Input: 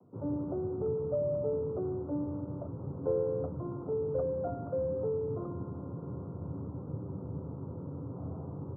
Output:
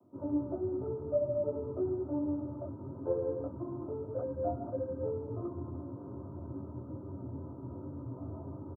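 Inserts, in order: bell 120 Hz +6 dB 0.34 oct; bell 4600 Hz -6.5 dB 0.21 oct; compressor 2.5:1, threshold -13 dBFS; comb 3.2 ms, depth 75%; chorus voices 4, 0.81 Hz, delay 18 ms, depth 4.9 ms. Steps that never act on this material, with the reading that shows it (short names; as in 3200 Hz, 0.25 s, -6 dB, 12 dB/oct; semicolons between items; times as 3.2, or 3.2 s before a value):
bell 4600 Hz: input band ends at 1100 Hz; compressor, threshold -13 dBFS: input peak -19.0 dBFS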